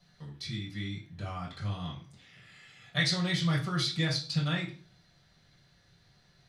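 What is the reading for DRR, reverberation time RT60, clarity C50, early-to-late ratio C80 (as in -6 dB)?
-4.0 dB, 0.45 s, 8.5 dB, 13.5 dB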